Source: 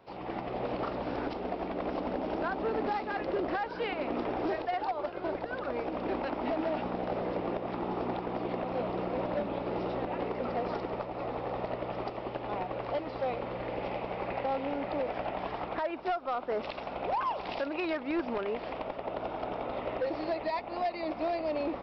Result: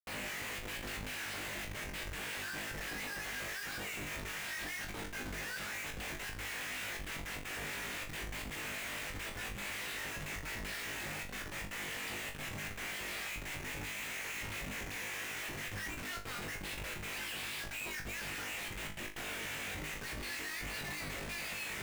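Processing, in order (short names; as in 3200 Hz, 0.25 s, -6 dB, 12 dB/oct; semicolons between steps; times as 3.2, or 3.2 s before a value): steep high-pass 1600 Hz 72 dB/oct; in parallel at +0.5 dB: limiter -37.5 dBFS, peak gain reduction 9 dB; on the sum: soft clip -33.5 dBFS, distortion -17 dB; step gate "xxxxxx.x.x." 155 bpm -12 dB; Schmitt trigger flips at -52 dBFS; on a send: flutter echo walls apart 3.4 m, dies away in 0.3 s; on the sum: gain +3 dB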